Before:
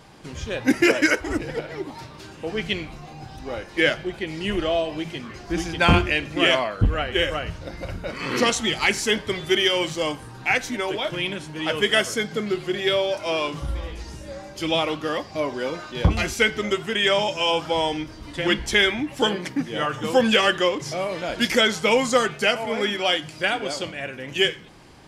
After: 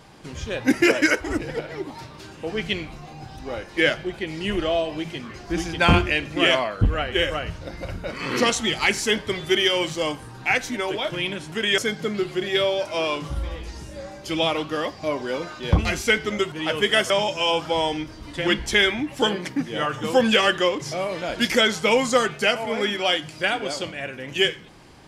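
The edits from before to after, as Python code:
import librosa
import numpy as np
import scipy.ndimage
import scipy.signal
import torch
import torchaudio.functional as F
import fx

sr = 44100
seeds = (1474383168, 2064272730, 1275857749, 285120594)

y = fx.edit(x, sr, fx.swap(start_s=11.52, length_s=0.58, other_s=16.84, other_length_s=0.26), tone=tone)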